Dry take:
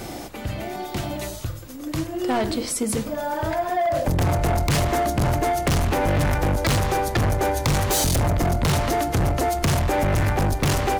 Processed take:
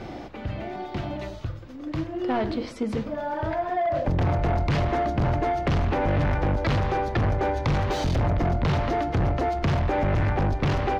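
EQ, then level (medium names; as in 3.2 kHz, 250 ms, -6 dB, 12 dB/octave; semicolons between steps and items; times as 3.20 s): distance through air 240 m; -2.0 dB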